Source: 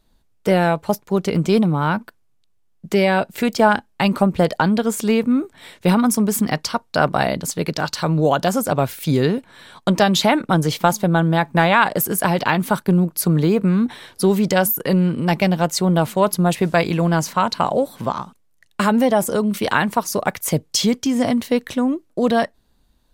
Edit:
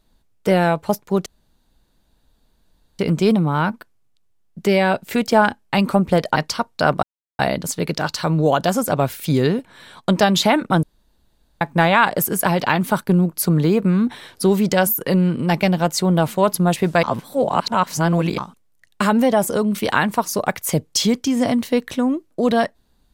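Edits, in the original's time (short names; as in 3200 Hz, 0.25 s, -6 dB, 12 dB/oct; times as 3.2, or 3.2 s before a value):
1.26 insert room tone 1.73 s
4.63–6.51 cut
7.18 insert silence 0.36 s
10.62–11.4 room tone
16.82–18.17 reverse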